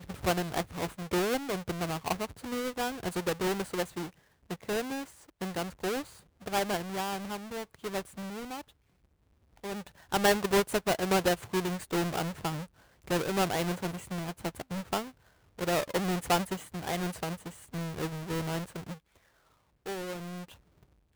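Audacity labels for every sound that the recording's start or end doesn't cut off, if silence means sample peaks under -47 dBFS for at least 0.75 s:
9.640000	18.950000	sound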